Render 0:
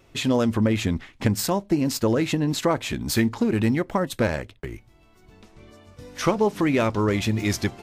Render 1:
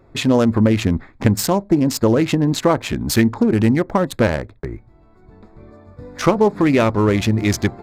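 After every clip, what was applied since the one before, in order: local Wiener filter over 15 samples; trim +6.5 dB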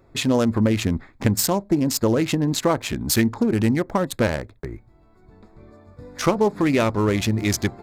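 treble shelf 4.4 kHz +7.5 dB; trim -4.5 dB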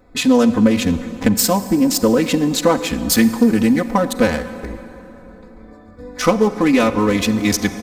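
comb 4 ms, depth 95%; on a send at -12 dB: reverberation RT60 3.8 s, pre-delay 33 ms; on the sum: trim +2 dB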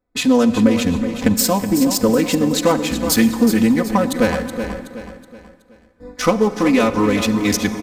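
gate -34 dBFS, range -24 dB; on a send: feedback delay 373 ms, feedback 40%, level -9.5 dB; on the sum: trim -1 dB

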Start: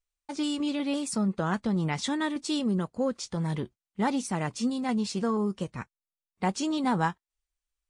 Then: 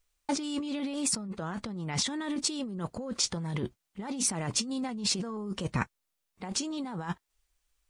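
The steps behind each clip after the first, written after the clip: compressor with a negative ratio -37 dBFS, ratio -1; trim +3.5 dB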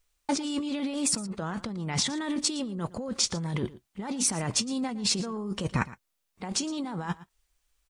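delay 114 ms -18 dB; trim +2.5 dB

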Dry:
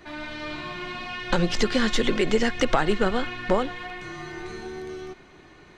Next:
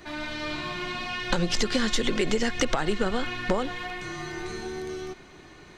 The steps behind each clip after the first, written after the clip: tone controls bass +1 dB, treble +6 dB; compression 6:1, threshold -21 dBFS, peak gain reduction 8 dB; trim +1 dB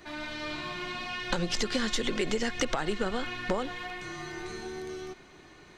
bass shelf 200 Hz -3 dB; trim -3.5 dB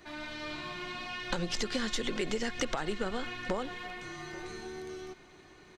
delay 836 ms -21.5 dB; trim -3.5 dB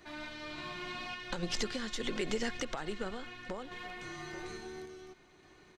random-step tremolo; trim -1 dB

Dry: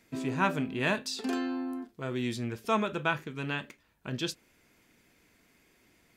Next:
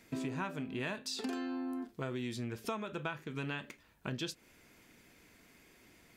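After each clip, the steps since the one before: compression 10:1, threshold -38 dBFS, peak gain reduction 17 dB; trim +3 dB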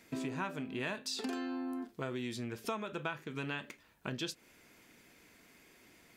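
bass shelf 130 Hz -7 dB; trim +1 dB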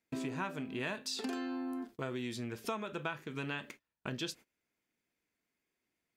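gate -52 dBFS, range -25 dB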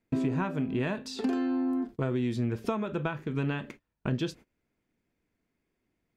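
tilt EQ -3 dB/octave; trim +4.5 dB

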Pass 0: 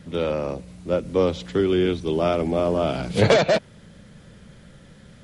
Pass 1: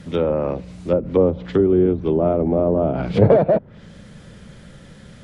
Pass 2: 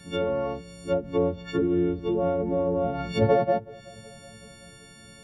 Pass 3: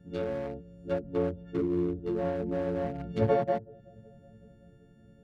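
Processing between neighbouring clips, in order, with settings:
low-pass that closes with the level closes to 690 Hz, closed at -18.5 dBFS; trim +5 dB
partials quantised in pitch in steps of 4 st; bucket-brigade echo 374 ms, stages 2048, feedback 58%, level -22.5 dB; trim -8 dB
local Wiener filter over 41 samples; trim -4 dB

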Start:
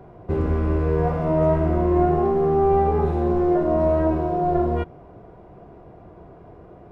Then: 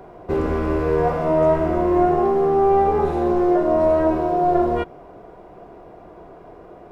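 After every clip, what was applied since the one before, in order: peaking EQ 100 Hz -10.5 dB 2 oct; in parallel at -3 dB: gain riding within 3 dB; on the sum: tone controls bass -2 dB, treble +4 dB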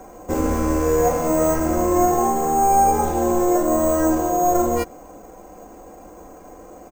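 sample-and-hold 6×; comb 3.8 ms, depth 69%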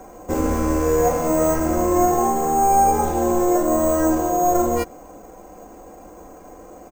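no audible change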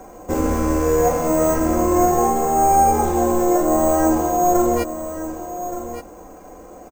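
delay 1172 ms -11 dB; trim +1 dB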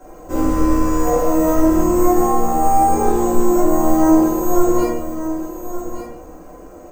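simulated room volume 160 m³, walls mixed, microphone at 2.9 m; trim -9.5 dB

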